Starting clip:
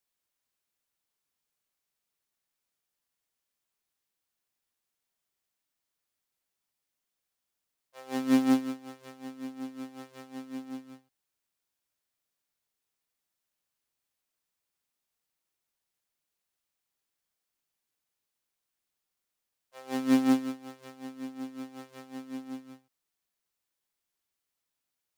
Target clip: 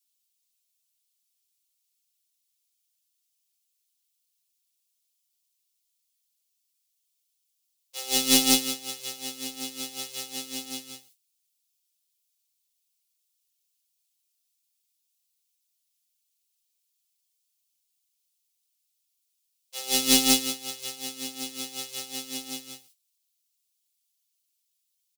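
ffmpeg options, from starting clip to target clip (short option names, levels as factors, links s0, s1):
-af "aexciter=amount=8.8:drive=5.5:freq=2400,agate=range=0.158:threshold=0.00112:ratio=16:detection=peak,aecho=1:1:5.3:0.85,aeval=exprs='0.794*(cos(1*acos(clip(val(0)/0.794,-1,1)))-cos(1*PI/2))+0.0224*(cos(6*acos(clip(val(0)/0.794,-1,1)))-cos(6*PI/2))':c=same"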